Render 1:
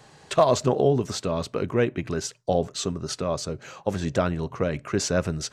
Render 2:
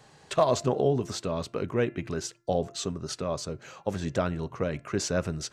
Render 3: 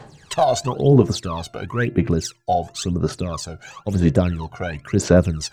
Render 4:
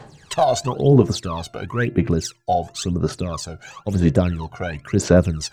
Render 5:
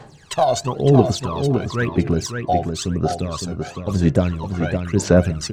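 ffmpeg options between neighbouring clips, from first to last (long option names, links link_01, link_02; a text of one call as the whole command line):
ffmpeg -i in.wav -af "bandreject=frequency=343.1:width_type=h:width=4,bandreject=frequency=686.2:width_type=h:width=4,bandreject=frequency=1029.3:width_type=h:width=4,bandreject=frequency=1372.4:width_type=h:width=4,bandreject=frequency=1715.5:width_type=h:width=4,bandreject=frequency=2058.6:width_type=h:width=4,bandreject=frequency=2401.7:width_type=h:width=4,bandreject=frequency=2744.8:width_type=h:width=4,volume=-4dB" out.wav
ffmpeg -i in.wav -af "aphaser=in_gain=1:out_gain=1:delay=1.4:decay=0.79:speed=0.98:type=sinusoidal,volume=3dB" out.wav
ffmpeg -i in.wav -af anull out.wav
ffmpeg -i in.wav -filter_complex "[0:a]asplit=2[link_01][link_02];[link_02]adelay=561,lowpass=frequency=4600:poles=1,volume=-6dB,asplit=2[link_03][link_04];[link_04]adelay=561,lowpass=frequency=4600:poles=1,volume=0.23,asplit=2[link_05][link_06];[link_06]adelay=561,lowpass=frequency=4600:poles=1,volume=0.23[link_07];[link_01][link_03][link_05][link_07]amix=inputs=4:normalize=0" out.wav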